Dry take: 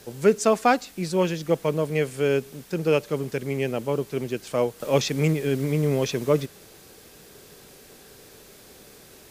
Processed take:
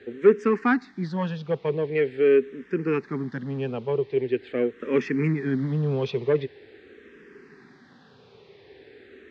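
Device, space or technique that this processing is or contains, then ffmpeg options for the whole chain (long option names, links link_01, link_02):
barber-pole phaser into a guitar amplifier: -filter_complex "[0:a]asplit=2[link_01][link_02];[link_02]afreqshift=-0.44[link_03];[link_01][link_03]amix=inputs=2:normalize=1,asoftclip=type=tanh:threshold=-14dB,highpass=88,equalizer=frequency=250:width_type=q:width=4:gain=7,equalizer=frequency=400:width_type=q:width=4:gain=8,equalizer=frequency=620:width_type=q:width=4:gain=-8,equalizer=frequency=1800:width_type=q:width=4:gain=9,equalizer=frequency=3000:width_type=q:width=4:gain=-3,lowpass=frequency=3600:width=0.5412,lowpass=frequency=3600:width=1.3066"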